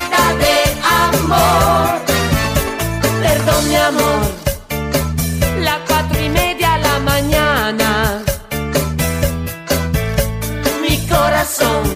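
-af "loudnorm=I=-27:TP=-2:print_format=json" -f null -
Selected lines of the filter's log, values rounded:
"input_i" : "-15.2",
"input_tp" : "-2.3",
"input_lra" : "2.6",
"input_thresh" : "-25.2",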